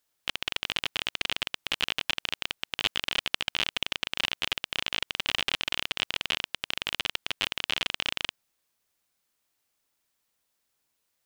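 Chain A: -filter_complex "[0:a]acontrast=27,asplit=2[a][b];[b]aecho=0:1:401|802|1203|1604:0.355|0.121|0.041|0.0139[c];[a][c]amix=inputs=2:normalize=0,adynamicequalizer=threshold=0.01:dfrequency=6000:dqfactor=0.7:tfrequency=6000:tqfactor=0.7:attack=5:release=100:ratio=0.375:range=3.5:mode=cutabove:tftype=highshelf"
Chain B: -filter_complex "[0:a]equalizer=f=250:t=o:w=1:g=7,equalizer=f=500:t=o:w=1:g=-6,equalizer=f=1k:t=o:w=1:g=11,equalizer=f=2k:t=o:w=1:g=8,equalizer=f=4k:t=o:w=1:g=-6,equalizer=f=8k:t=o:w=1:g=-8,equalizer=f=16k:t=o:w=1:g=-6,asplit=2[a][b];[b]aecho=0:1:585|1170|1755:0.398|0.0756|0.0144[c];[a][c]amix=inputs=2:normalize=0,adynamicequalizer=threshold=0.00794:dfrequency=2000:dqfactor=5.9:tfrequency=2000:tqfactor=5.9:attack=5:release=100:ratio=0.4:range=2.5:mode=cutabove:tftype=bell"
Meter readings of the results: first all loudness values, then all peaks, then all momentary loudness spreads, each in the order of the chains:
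-25.5, -28.0 LUFS; -2.0, -2.5 dBFS; 4, 4 LU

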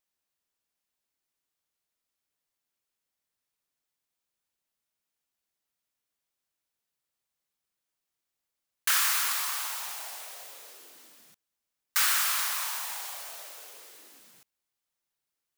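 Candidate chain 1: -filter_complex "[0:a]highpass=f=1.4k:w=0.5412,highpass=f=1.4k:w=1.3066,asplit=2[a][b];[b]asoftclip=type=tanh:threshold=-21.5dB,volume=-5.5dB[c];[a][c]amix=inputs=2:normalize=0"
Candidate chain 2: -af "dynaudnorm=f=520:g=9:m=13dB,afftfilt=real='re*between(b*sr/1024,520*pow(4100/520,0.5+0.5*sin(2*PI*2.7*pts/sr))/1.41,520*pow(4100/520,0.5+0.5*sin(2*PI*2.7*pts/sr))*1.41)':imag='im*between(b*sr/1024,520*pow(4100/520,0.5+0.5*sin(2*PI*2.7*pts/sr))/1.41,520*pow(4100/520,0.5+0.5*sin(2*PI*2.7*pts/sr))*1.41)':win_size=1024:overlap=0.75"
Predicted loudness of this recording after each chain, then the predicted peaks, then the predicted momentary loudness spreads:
-24.5, -28.0 LUFS; -10.5, -9.5 dBFS; 21, 22 LU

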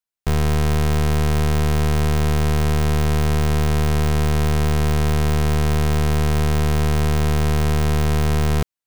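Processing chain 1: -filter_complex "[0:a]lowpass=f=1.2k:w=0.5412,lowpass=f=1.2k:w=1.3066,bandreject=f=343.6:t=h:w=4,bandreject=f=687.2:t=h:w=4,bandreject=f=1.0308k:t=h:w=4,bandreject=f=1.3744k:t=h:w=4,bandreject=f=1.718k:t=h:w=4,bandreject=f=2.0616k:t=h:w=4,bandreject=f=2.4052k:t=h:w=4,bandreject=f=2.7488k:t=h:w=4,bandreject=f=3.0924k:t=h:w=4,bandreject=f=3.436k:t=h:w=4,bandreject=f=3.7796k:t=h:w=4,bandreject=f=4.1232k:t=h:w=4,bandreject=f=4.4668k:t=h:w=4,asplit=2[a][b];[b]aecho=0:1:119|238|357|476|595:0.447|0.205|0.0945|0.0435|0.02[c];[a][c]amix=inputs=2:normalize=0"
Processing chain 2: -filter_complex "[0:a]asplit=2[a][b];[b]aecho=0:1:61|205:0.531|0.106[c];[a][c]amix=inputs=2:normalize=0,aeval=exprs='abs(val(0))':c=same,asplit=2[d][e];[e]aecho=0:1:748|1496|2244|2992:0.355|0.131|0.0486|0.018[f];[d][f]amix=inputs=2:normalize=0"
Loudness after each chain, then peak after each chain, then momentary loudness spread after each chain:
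-16.0, -22.0 LUFS; -11.0, -9.5 dBFS; 0, 1 LU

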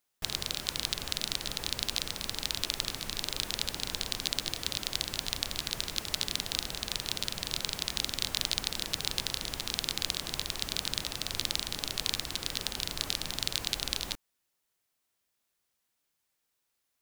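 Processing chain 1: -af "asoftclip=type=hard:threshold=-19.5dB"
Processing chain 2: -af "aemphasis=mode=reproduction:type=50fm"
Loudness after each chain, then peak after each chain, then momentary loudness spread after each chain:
-36.0, -36.5 LUFS; -19.5, -11.0 dBFS; 1, 3 LU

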